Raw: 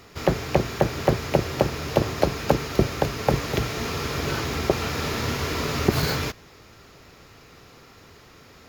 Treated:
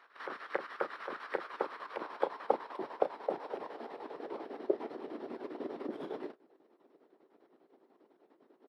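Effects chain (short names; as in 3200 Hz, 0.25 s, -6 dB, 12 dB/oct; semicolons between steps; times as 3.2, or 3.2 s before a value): band-pass sweep 1700 Hz -> 500 Hz, 1.26–5.07; chopper 10 Hz, depth 60%, duty 65%; HPF 230 Hz 24 dB/oct; doubler 34 ms -9.5 dB; formant shift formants -4 st; harmonic-percussive split harmonic -13 dB; gain +1 dB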